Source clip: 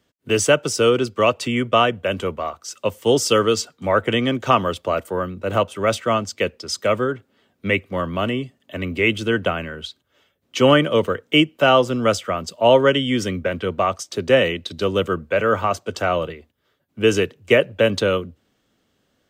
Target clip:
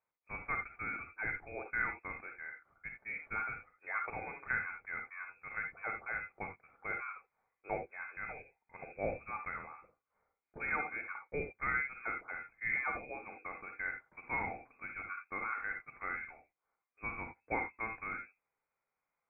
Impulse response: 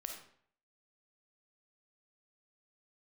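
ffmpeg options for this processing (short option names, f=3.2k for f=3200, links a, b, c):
-filter_complex "[0:a]aderivative[a];[1:a]atrim=start_sample=2205,atrim=end_sample=3969[b];[a][b]afir=irnorm=-1:irlink=0,lowpass=f=2.3k:t=q:w=0.5098,lowpass=f=2.3k:t=q:w=0.6013,lowpass=f=2.3k:t=q:w=0.9,lowpass=f=2.3k:t=q:w=2.563,afreqshift=-2700,volume=1dB"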